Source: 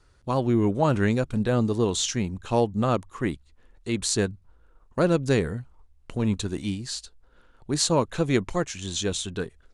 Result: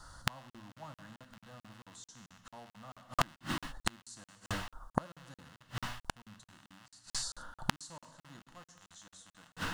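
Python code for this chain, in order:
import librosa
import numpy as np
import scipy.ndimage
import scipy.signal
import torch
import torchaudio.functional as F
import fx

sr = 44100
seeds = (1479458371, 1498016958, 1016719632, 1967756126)

y = fx.rattle_buzz(x, sr, strikes_db=-39.0, level_db=-12.0)
y = fx.low_shelf(y, sr, hz=180.0, db=-10.5)
y = fx.fixed_phaser(y, sr, hz=1000.0, stages=4)
y = fx.rev_gated(y, sr, seeds[0], gate_ms=390, shape='falling', drr_db=5.5)
y = fx.gate_flip(y, sr, shuts_db=-27.0, range_db=-37)
y = fx.buffer_crackle(y, sr, first_s=0.5, period_s=0.22, block=2048, kind='zero')
y = F.gain(torch.from_numpy(y), 14.0).numpy()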